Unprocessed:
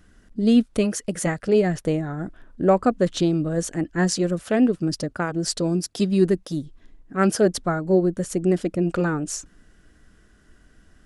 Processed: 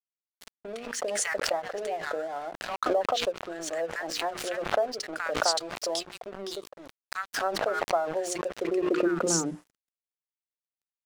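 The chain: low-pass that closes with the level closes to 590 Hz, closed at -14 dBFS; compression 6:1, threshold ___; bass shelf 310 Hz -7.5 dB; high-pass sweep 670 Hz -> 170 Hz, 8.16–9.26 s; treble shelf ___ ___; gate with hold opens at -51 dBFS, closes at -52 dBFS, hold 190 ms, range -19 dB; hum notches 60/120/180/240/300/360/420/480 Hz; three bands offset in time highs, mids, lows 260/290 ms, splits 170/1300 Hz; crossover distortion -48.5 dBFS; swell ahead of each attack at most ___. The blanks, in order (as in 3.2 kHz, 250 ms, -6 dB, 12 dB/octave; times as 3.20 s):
-21 dBFS, 4.2 kHz, +11 dB, 45 dB/s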